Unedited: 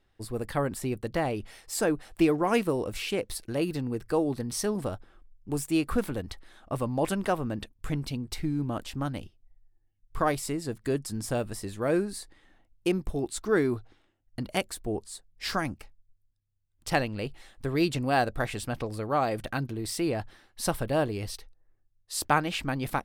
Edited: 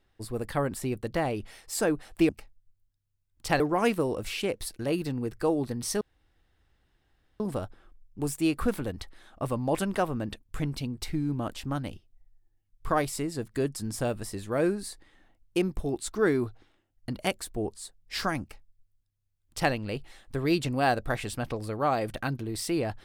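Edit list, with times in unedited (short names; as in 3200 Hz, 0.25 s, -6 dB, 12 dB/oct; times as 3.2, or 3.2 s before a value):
4.7 insert room tone 1.39 s
15.71–17.02 copy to 2.29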